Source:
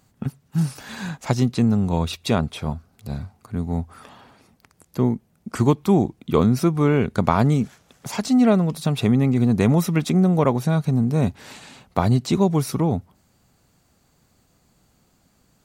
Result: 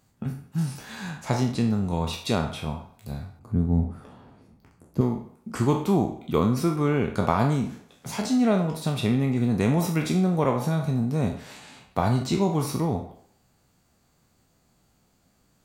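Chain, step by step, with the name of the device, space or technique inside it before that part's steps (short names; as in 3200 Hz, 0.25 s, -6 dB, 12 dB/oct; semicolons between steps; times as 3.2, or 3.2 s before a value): spectral trails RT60 0.44 s; filtered reverb send (on a send: HPF 420 Hz + LPF 3200 Hz + reverb RT60 0.70 s, pre-delay 22 ms, DRR 8 dB); 3.39–5.01 on the sum: tilt shelf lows +9 dB, about 670 Hz; gain -5.5 dB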